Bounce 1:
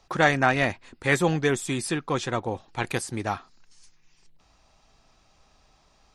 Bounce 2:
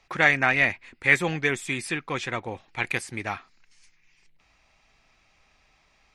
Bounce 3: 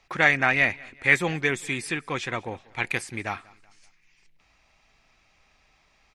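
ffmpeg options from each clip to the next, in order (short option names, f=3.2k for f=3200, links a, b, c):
-af "equalizer=f=2.2k:t=o:w=0.83:g=13.5,volume=-5dB"
-af "aecho=1:1:190|380|570:0.0631|0.0271|0.0117"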